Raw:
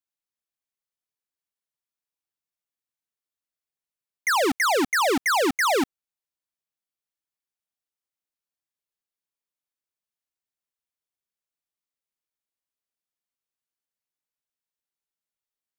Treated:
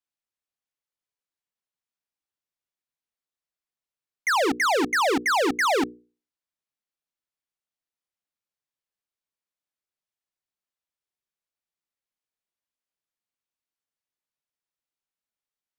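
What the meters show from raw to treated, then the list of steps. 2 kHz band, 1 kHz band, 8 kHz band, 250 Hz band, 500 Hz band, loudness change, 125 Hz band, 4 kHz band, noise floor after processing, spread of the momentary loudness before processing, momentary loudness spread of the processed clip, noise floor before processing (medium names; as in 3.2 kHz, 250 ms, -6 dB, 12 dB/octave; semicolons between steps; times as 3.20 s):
-0.5 dB, 0.0 dB, -3.5 dB, -0.5 dB, -0.5 dB, -0.5 dB, -1.0 dB, -1.5 dB, under -85 dBFS, 5 LU, 5 LU, under -85 dBFS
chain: treble shelf 8.8 kHz -9.5 dB; hum notches 60/120/180/240/300/360/420/480 Hz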